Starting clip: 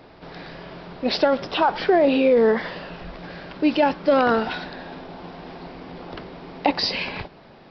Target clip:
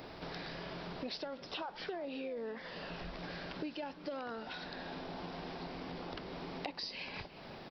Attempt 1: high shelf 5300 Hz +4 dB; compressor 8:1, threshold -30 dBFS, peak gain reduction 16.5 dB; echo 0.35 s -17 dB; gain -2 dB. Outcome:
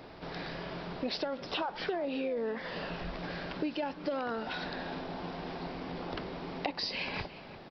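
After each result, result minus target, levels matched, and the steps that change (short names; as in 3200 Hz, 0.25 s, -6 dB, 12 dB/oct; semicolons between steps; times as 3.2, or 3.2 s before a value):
compressor: peak gain reduction -7.5 dB; 8000 Hz band -2.5 dB
change: compressor 8:1, threshold -38.5 dBFS, peak gain reduction 23.5 dB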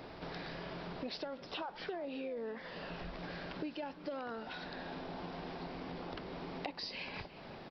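8000 Hz band -3.0 dB
change: high shelf 5300 Hz +12.5 dB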